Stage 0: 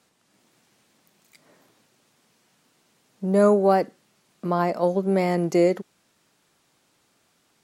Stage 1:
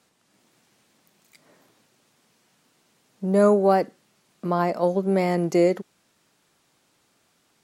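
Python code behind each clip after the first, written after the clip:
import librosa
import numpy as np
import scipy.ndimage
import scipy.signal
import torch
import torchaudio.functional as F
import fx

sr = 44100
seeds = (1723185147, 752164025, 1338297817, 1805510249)

y = x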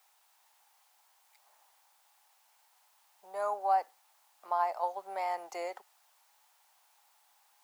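y = fx.rider(x, sr, range_db=10, speed_s=2.0)
y = fx.dmg_noise_colour(y, sr, seeds[0], colour='white', level_db=-58.0)
y = fx.ladder_highpass(y, sr, hz=760.0, resonance_pct=70)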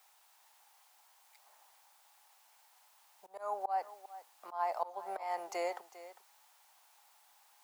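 y = fx.auto_swell(x, sr, attack_ms=245.0)
y = y + 10.0 ** (-15.5 / 20.0) * np.pad(y, (int(401 * sr / 1000.0), 0))[:len(y)]
y = y * 10.0 ** (2.0 / 20.0)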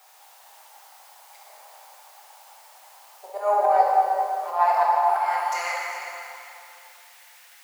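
y = fx.diode_clip(x, sr, knee_db=-26.5)
y = fx.filter_sweep_highpass(y, sr, from_hz=540.0, to_hz=1900.0, start_s=3.94, end_s=6.03, q=2.2)
y = fx.rev_plate(y, sr, seeds[1], rt60_s=3.0, hf_ratio=0.8, predelay_ms=0, drr_db=-4.5)
y = y * 10.0 ** (9.0 / 20.0)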